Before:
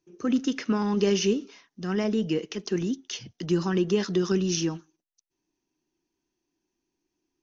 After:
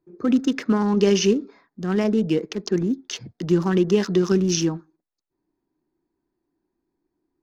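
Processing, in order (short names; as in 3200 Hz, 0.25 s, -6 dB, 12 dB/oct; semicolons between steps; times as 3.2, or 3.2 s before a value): Wiener smoothing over 15 samples; gain +5.5 dB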